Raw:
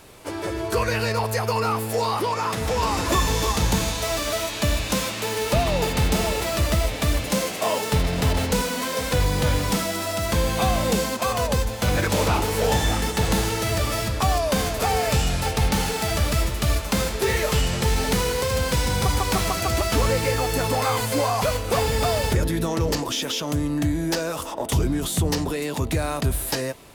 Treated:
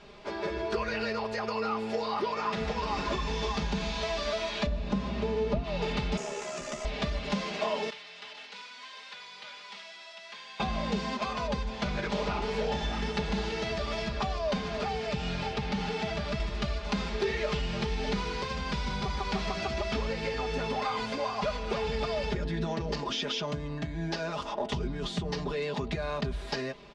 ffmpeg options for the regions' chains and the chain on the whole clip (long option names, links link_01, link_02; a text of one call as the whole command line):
ffmpeg -i in.wav -filter_complex "[0:a]asettb=1/sr,asplit=3[link_01][link_02][link_03];[link_01]atrim=end=4.664[link_04];[link_02]atrim=start=4.66:end=5.64,asetpts=PTS-STARTPTS,afade=type=in:duration=0.004:curve=qsin,afade=type=out:start_time=0.976:duration=0.004:curve=qsin,tiltshelf=frequency=970:gain=8,aeval=exprs='val(0)+0.0501*(sin(2*PI*60*n/s)+sin(2*PI*2*60*n/s)/2+sin(2*PI*3*60*n/s)/3+sin(2*PI*4*60*n/s)/4+sin(2*PI*5*60*n/s)/5)':channel_layout=same[link_05];[link_03]atrim=start=5.636[link_06];[link_04][link_05]acrossfade=duration=0.004:curve1=hsin:curve2=qsin[link_07];[link_07][link_06]acrossfade=duration=0.004:curve1=qsin:curve2=hsin,asettb=1/sr,asplit=3[link_08][link_09][link_10];[link_08]atrim=end=6.174[link_11];[link_09]atrim=start=6.17:end=6.85,asetpts=PTS-STARTPTS,afade=type=in:duration=0.004:curve=qsin,afade=type=out:start_time=0.676:duration=0.004:curve=qsin,highpass=240,highshelf=frequency=5400:width_type=q:width=3:gain=9.5,aeval=exprs='val(0)*sin(2*PI*35*n/s)':channel_layout=same[link_12];[link_10]atrim=start=6.846[link_13];[link_11][link_12]acrossfade=duration=0.004:curve1=hsin:curve2=qsin[link_14];[link_14][link_13]acrossfade=duration=0.004:curve1=qsin:curve2=hsin,asettb=1/sr,asplit=3[link_15][link_16][link_17];[link_15]atrim=end=7.904[link_18];[link_16]atrim=start=7.9:end=10.6,asetpts=PTS-STARTPTS,afade=type=in:duration=0.004:curve=qsin,afade=type=out:start_time=2.696:duration=0.004:curve=qsin,acrossover=split=3600[link_19][link_20];[link_20]acompressor=threshold=-44dB:ratio=4:attack=1:release=60[link_21];[link_19][link_21]amix=inputs=2:normalize=0,highpass=frequency=360:poles=1,aderivative[link_22];[link_17]atrim=start=10.596[link_23];[link_18][link_22]acrossfade=duration=0.004:curve1=hsin:curve2=qsin[link_24];[link_24][link_23]acrossfade=duration=0.004:curve1=qsin:curve2=hsin,asettb=1/sr,asplit=3[link_25][link_26][link_27];[link_25]atrim=end=14.574[link_28];[link_26]atrim=start=14.57:end=16.4,asetpts=PTS-STARTPTS,afade=type=in:duration=0.004:curve=qsin,afade=type=out:start_time=1.826:duration=0.004:curve=qsin,acrossover=split=190|3500[link_29][link_30][link_31];[link_29]acompressor=threshold=-21dB:ratio=4[link_32];[link_30]acompressor=threshold=-27dB:ratio=4[link_33];[link_31]acompressor=threshold=-35dB:ratio=4[link_34];[link_32][link_33][link_34]amix=inputs=3:normalize=0,highpass=68[link_35];[link_27]atrim=start=16.396[link_36];[link_28][link_35]acrossfade=duration=0.004:curve1=hsin:curve2=qsin[link_37];[link_37][link_36]acrossfade=duration=0.004:curve1=qsin:curve2=hsin,acompressor=threshold=-24dB:ratio=6,lowpass=frequency=4900:width=0.5412,lowpass=frequency=4900:width=1.3066,aecho=1:1:4.9:0.89,volume=-5.5dB" out.wav